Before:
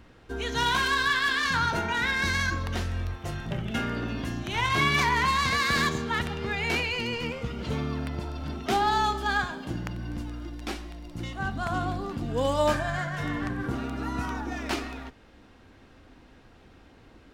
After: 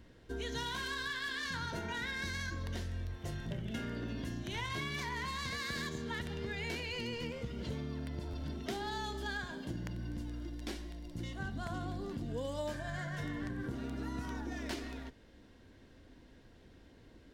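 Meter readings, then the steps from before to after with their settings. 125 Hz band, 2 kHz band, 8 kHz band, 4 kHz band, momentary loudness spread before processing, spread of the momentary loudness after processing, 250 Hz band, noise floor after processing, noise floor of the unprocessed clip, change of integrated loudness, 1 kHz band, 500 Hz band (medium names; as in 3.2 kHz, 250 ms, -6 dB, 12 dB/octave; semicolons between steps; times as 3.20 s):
-8.5 dB, -13.0 dB, -10.5 dB, -11.0 dB, 12 LU, 5 LU, -8.5 dB, -59 dBFS, -54 dBFS, -12.0 dB, -16.5 dB, -10.5 dB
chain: graphic EQ with 31 bands 800 Hz -8 dB, 1.25 kHz -11 dB, 2.5 kHz -6 dB; compression, threshold -31 dBFS, peak gain reduction 9.5 dB; buffer glitch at 8.30 s, samples 512, times 2; trim -4.5 dB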